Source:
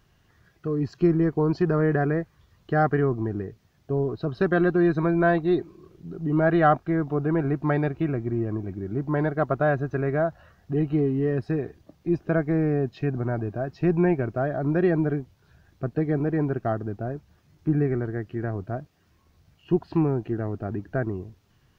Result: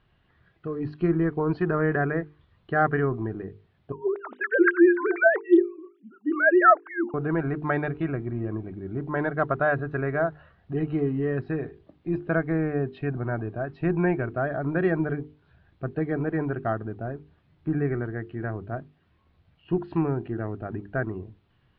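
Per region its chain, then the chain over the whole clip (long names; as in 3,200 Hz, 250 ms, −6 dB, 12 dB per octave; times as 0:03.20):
0:03.92–0:07.14: three sine waves on the formant tracks + auto-filter high-pass sine 4.1 Hz 300–1,600 Hz
whole clip: Butterworth low-pass 3,900 Hz 36 dB per octave; mains-hum notches 50/100/150/200/250/300/350/400/450 Hz; dynamic equaliser 1,500 Hz, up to +6 dB, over −43 dBFS, Q 1.3; level −2 dB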